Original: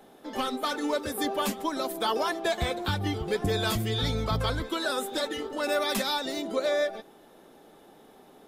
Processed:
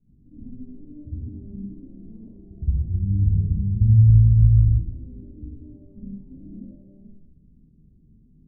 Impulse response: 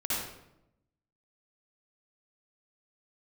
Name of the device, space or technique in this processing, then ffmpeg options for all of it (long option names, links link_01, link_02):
club heard from the street: -filter_complex "[0:a]alimiter=limit=-24dB:level=0:latency=1:release=39,lowpass=frequency=140:width=0.5412,lowpass=frequency=140:width=1.3066[link_01];[1:a]atrim=start_sample=2205[link_02];[link_01][link_02]afir=irnorm=-1:irlink=0,volume=9dB"